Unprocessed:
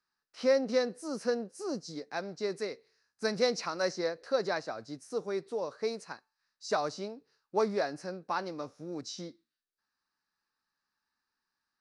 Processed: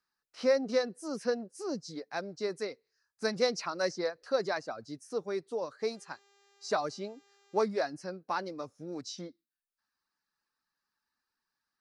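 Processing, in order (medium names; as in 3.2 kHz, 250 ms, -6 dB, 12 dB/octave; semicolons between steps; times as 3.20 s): reverb removal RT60 0.52 s; 5.79–7.57 s: mains buzz 400 Hz, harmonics 19, -67 dBFS -3 dB/octave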